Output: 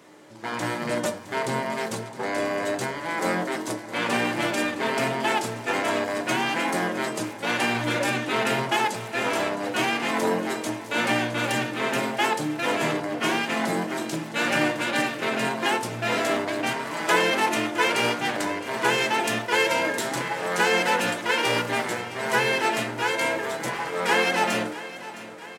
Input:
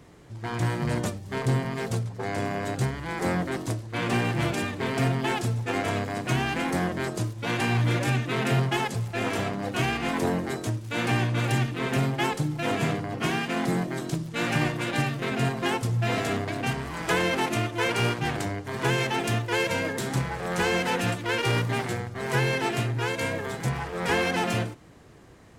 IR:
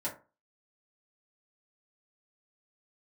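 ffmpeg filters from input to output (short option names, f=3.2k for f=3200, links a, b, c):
-filter_complex "[0:a]highpass=330,aecho=1:1:663|1326|1989|2652|3315|3978:0.168|0.099|0.0584|0.0345|0.0203|0.012,asplit=2[a][b];[1:a]atrim=start_sample=2205[c];[b][c]afir=irnorm=-1:irlink=0,volume=-5.5dB[d];[a][d]amix=inputs=2:normalize=0,volume=1.5dB"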